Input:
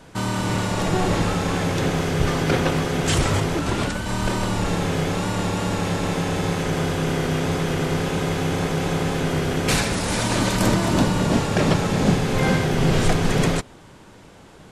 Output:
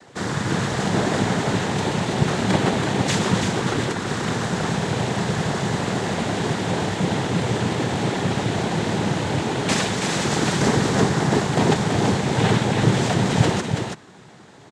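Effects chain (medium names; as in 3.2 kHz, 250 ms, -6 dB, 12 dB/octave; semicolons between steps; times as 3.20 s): noise-vocoded speech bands 6; delay 330 ms -5.5 dB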